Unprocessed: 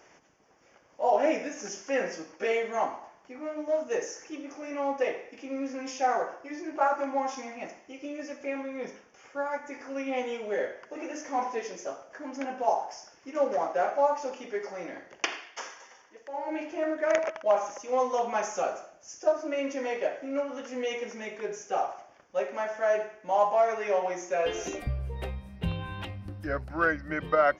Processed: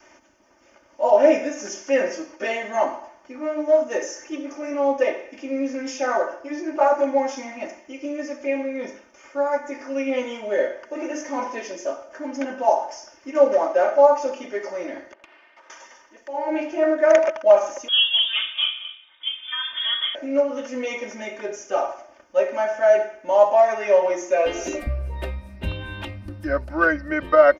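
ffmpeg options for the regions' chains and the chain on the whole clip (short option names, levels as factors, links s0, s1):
-filter_complex "[0:a]asettb=1/sr,asplit=3[s0][s1][s2];[s0]atrim=end=15.134[s3];[s1]atrim=start=15.13:end=15.7,asetpts=PTS-STARTPTS,afade=t=in:d=0.004:c=qsin,afade=t=out:st=0.566:d=0.004:c=qsin,aeval=exprs='if(lt(val(0),0),0.251*val(0),val(0))':c=same,highpass=360,lowpass=2200,acompressor=threshold=0.00178:ratio=4:attack=3.2:release=140:knee=1:detection=peak[s4];[s2]atrim=start=15.696[s5];[s3][s4]acrossfade=d=0.004:c1=hsin:c2=qsin[s6];[s6][s5]acrossfade=d=0.004:c1=qsin:c2=hsin,asettb=1/sr,asplit=3[s7][s8][s9];[s7]atrim=end=17.884[s10];[s8]atrim=start=17.88:end=20.15,asetpts=PTS-STARTPTS,afade=t=in:d=0.004:c=qsin,afade=t=out:st=2.266:d=0.004:c=qsin,lowpass=f=3200:t=q:w=0.5098,lowpass=f=3200:t=q:w=0.6013,lowpass=f=3200:t=q:w=0.9,lowpass=f=3200:t=q:w=2.563,afreqshift=-3800,aecho=1:1:223:0.211,atrim=end_sample=100107[s11];[s9]atrim=start=20.146[s12];[s10][s11]acrossfade=d=0.004:c1=hsin:c2=qsin[s13];[s13][s12]acrossfade=d=0.004:c1=qsin:c2=hsin,adynamicequalizer=threshold=0.0141:dfrequency=520:dqfactor=2.4:tfrequency=520:tqfactor=2.4:attack=5:release=100:ratio=0.375:range=2.5:mode=boostabove:tftype=bell,aecho=1:1:3.3:0.79,volume=1.5"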